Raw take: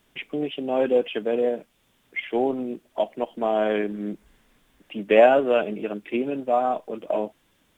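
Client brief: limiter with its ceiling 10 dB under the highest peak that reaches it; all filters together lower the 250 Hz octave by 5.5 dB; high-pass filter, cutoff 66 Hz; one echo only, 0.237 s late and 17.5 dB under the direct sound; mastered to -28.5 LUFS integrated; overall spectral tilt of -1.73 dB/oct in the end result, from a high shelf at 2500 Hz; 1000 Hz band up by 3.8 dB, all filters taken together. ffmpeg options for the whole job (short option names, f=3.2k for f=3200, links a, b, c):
-af "highpass=66,equalizer=f=250:t=o:g=-7.5,equalizer=f=1k:t=o:g=6,highshelf=f=2.5k:g=6,alimiter=limit=-12dB:level=0:latency=1,aecho=1:1:237:0.133,volume=-3dB"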